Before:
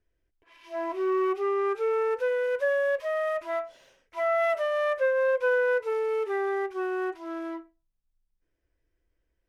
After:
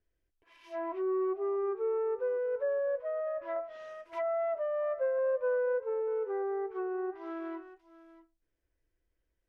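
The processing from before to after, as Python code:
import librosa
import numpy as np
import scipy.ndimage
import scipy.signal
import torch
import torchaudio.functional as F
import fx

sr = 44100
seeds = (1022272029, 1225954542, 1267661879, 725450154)

y = x + 10.0 ** (-17.5 / 20.0) * np.pad(x, (int(640 * sr / 1000.0), 0))[:len(x)]
y = fx.env_lowpass_down(y, sr, base_hz=870.0, full_db=-25.5)
y = fx.band_squash(y, sr, depth_pct=40, at=(3.56, 5.19))
y = y * librosa.db_to_amplitude(-4.5)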